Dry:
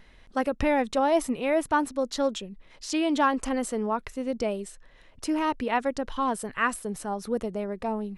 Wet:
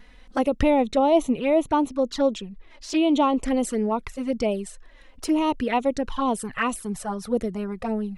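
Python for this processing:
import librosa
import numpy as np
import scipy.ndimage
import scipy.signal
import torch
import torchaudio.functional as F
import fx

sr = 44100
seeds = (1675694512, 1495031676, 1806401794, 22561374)

y = fx.high_shelf(x, sr, hz=5600.0, db=-8.5, at=(0.7, 3.48))
y = fx.env_flanger(y, sr, rest_ms=4.5, full_db=-23.0)
y = F.gain(torch.from_numpy(y), 6.0).numpy()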